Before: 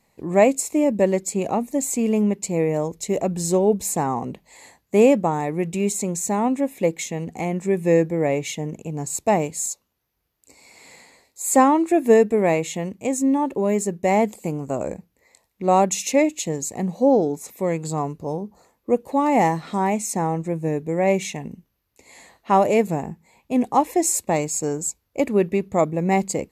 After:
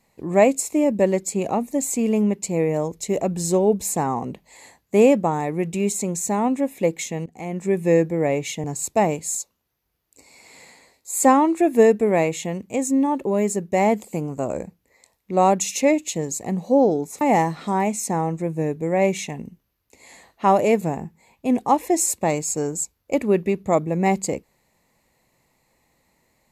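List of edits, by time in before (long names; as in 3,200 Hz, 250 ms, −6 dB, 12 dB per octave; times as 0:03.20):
0:07.26–0:07.68: fade in, from −18.5 dB
0:08.64–0:08.95: remove
0:17.52–0:19.27: remove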